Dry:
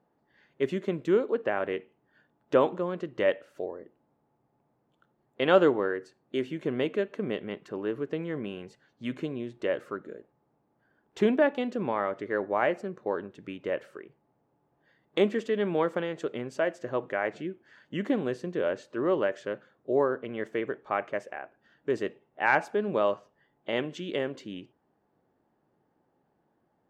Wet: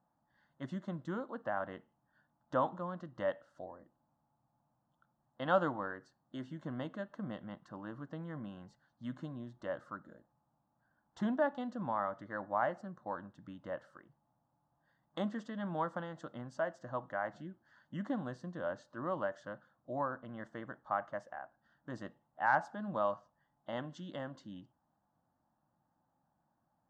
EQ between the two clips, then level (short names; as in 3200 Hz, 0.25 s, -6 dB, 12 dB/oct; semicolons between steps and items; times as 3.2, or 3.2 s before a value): air absorption 84 m; fixed phaser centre 1000 Hz, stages 4; -3.0 dB